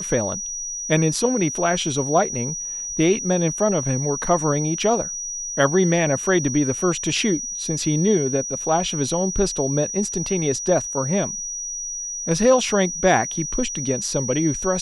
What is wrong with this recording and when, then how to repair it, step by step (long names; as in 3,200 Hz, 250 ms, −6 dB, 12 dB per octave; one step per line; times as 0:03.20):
whistle 5,800 Hz −27 dBFS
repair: notch filter 5,800 Hz, Q 30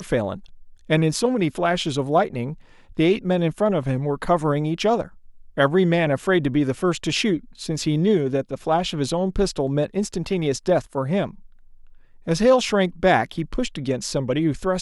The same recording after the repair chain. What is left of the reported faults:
none of them is left